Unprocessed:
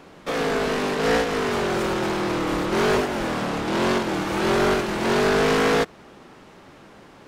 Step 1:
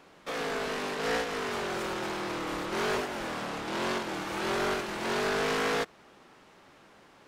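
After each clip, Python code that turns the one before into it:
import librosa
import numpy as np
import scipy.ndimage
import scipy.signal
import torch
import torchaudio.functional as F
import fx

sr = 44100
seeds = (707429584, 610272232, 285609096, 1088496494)

y = fx.low_shelf(x, sr, hz=470.0, db=-7.5)
y = y * 10.0 ** (-6.5 / 20.0)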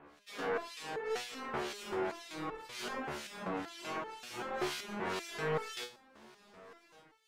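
y = fx.harmonic_tremolo(x, sr, hz=2.0, depth_pct=100, crossover_hz=2300.0)
y = y + 10.0 ** (-23.5 / 20.0) * np.pad(y, (int(1169 * sr / 1000.0), 0))[:len(y)]
y = fx.resonator_held(y, sr, hz=5.2, low_hz=73.0, high_hz=440.0)
y = y * 10.0 ** (8.5 / 20.0)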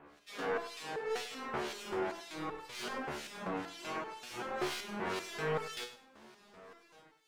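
y = fx.tracing_dist(x, sr, depth_ms=0.024)
y = fx.echo_feedback(y, sr, ms=100, feedback_pct=26, wet_db=-14.5)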